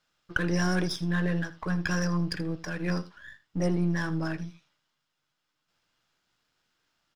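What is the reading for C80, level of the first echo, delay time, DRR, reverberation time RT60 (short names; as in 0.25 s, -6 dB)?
none, -17.5 dB, 81 ms, none, none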